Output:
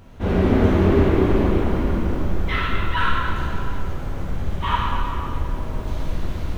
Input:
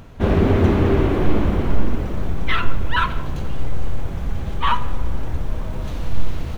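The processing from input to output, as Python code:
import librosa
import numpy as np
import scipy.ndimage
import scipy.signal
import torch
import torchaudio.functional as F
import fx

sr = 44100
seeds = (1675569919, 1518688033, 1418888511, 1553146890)

y = fx.rev_plate(x, sr, seeds[0], rt60_s=2.5, hf_ratio=0.75, predelay_ms=0, drr_db=-6.5)
y = F.gain(torch.from_numpy(y), -7.5).numpy()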